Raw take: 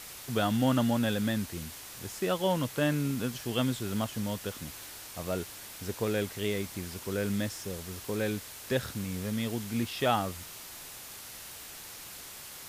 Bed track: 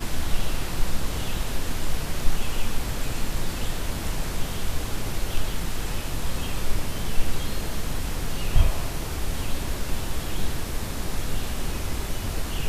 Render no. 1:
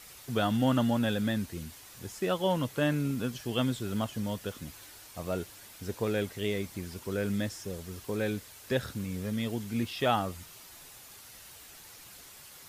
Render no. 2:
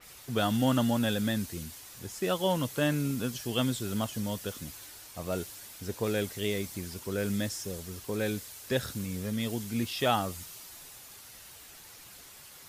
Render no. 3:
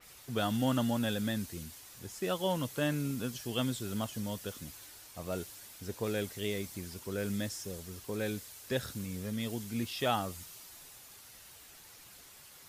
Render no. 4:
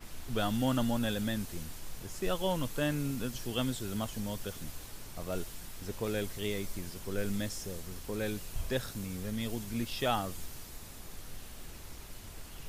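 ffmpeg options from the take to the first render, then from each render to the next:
-af "afftdn=nr=7:nf=-46"
-af "adynamicequalizer=threshold=0.00316:dfrequency=3800:dqfactor=0.7:tfrequency=3800:tqfactor=0.7:attack=5:release=100:ratio=0.375:range=3.5:mode=boostabove:tftype=highshelf"
-af "volume=-4dB"
-filter_complex "[1:a]volume=-19.5dB[a];[0:a][a]amix=inputs=2:normalize=0"

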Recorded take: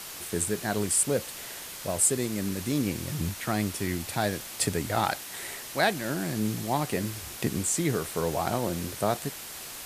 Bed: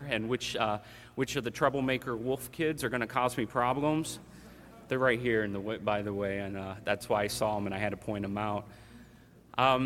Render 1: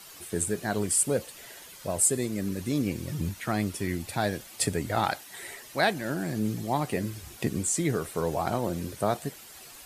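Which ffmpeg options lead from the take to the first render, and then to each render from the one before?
-af "afftdn=nr=10:nf=-41"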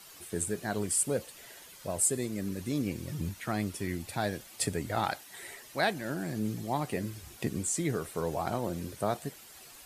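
-af "volume=-4dB"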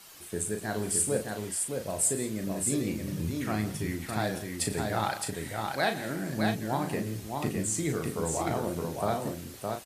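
-filter_complex "[0:a]asplit=2[a][b];[b]adelay=37,volume=-7dB[c];[a][c]amix=inputs=2:normalize=0,asplit=2[d][e];[e]aecho=0:1:110|168|614:0.141|0.141|0.631[f];[d][f]amix=inputs=2:normalize=0"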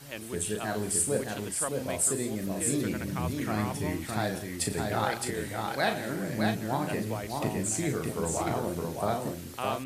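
-filter_complex "[1:a]volume=-8.5dB[a];[0:a][a]amix=inputs=2:normalize=0"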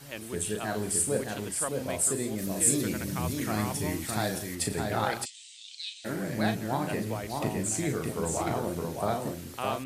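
-filter_complex "[0:a]asettb=1/sr,asplit=3[a][b][c];[a]atrim=end=2.384[d];[b]atrim=start=2.38:end=4.55,asetpts=PTS-STARTPTS,afade=t=in:d=0.004:c=qsin,afade=t=out:st=2.166:d=0.004:c=qsin,bass=f=250:g=0,treble=f=4k:g=7[e];[c]atrim=start=4.546[f];[d][e]acrossfade=d=0.004:c1=hsin:c2=qsin[g];[g][f]acrossfade=d=0.004:c1=qsin:c2=hsin,asplit=3[h][i][j];[h]afade=t=out:st=5.24:d=0.02[k];[i]asuperpass=centerf=4900:order=12:qfactor=0.86,afade=t=in:st=5.24:d=0.02,afade=t=out:st=6.04:d=0.02[l];[j]afade=t=in:st=6.04:d=0.02[m];[k][l][m]amix=inputs=3:normalize=0"

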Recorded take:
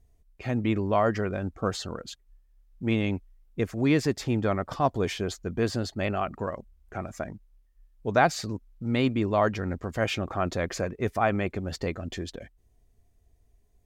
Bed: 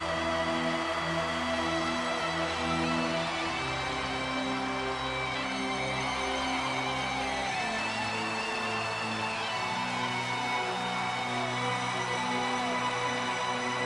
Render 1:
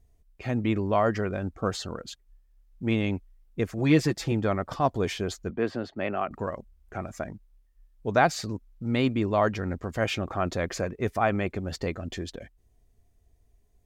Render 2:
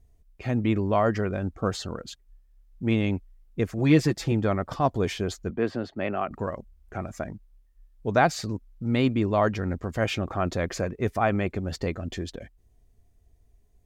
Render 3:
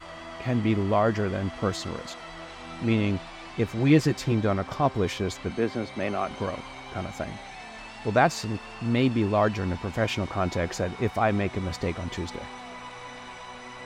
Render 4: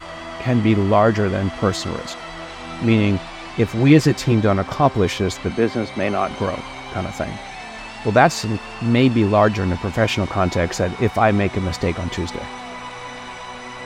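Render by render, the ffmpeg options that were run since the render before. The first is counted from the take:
-filter_complex "[0:a]asettb=1/sr,asplit=3[a][b][c];[a]atrim=end=3.784[d];[b]atrim=start=3.78:end=4.32,asetpts=PTS-STARTPTS,afade=t=in:d=0.004:c=qsin,afade=t=out:st=0.536:d=0.004:c=qsin,aecho=1:1:6:0.6,atrim=end_sample=23814[e];[c]atrim=start=4.316[f];[d][e]acrossfade=d=0.004:c1=hsin:c2=qsin[g];[g][f]acrossfade=d=0.004:c1=qsin:c2=hsin,asettb=1/sr,asplit=3[h][i][j];[h]atrim=end=5.504[k];[i]atrim=start=5.5:end=6.31,asetpts=PTS-STARTPTS,afade=t=in:d=0.004:c=qsin,afade=t=out:st=0.806:d=0.004:c=qsin,acrossover=split=180 3300:gain=0.224 1 0.112[l][m][n];[l][m][n]amix=inputs=3:normalize=0[o];[j]atrim=start=6.306[p];[k][o]acrossfade=d=0.004:c1=hsin:c2=qsin[q];[q][p]acrossfade=d=0.004:c1=qsin:c2=hsin"
-af "lowshelf=f=330:g=3"
-filter_complex "[1:a]volume=-10.5dB[a];[0:a][a]amix=inputs=2:normalize=0"
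-af "volume=8dB,alimiter=limit=-1dB:level=0:latency=1"

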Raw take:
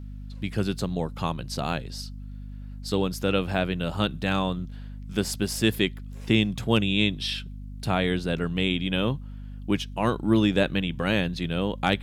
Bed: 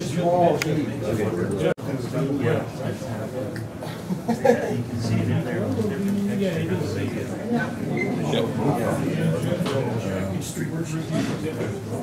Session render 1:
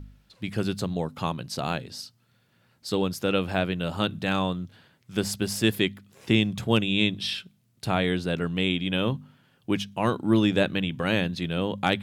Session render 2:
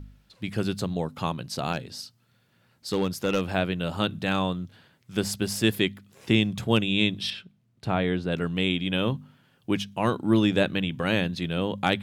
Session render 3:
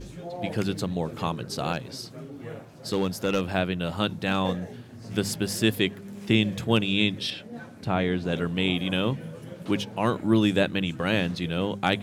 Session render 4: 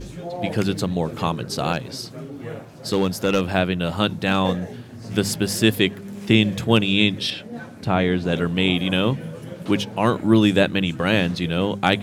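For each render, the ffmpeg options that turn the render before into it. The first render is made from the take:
-af "bandreject=f=50:t=h:w=4,bandreject=f=100:t=h:w=4,bandreject=f=150:t=h:w=4,bandreject=f=200:t=h:w=4,bandreject=f=250:t=h:w=4"
-filter_complex "[0:a]asettb=1/sr,asplit=3[a][b][c];[a]atrim=end=1.734[d];[b]atrim=start=1.73:end=3.41,asetpts=PTS-STARTPTS,afade=t=in:d=0.004:c=qsin,afade=t=out:st=1.676:d=0.004:c=qsin,asoftclip=type=hard:threshold=-17.5dB[e];[c]atrim=start=3.406[f];[d][e]acrossfade=d=0.004:c1=hsin:c2=qsin[g];[g][f]acrossfade=d=0.004:c1=qsin:c2=hsin,asettb=1/sr,asplit=3[h][i][j];[h]atrim=end=7.304[k];[i]atrim=start=7.3:end=8.32,asetpts=PTS-STARTPTS,afade=t=in:d=0.004:c=qsin,afade=t=out:st=1.016:d=0.004:c=qsin,lowpass=f=2k:p=1[l];[j]atrim=start=8.316[m];[k][l]acrossfade=d=0.004:c1=hsin:c2=qsin[n];[n][m]acrossfade=d=0.004:c1=qsin:c2=hsin"
-filter_complex "[1:a]volume=-16.5dB[a];[0:a][a]amix=inputs=2:normalize=0"
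-af "volume=5.5dB"

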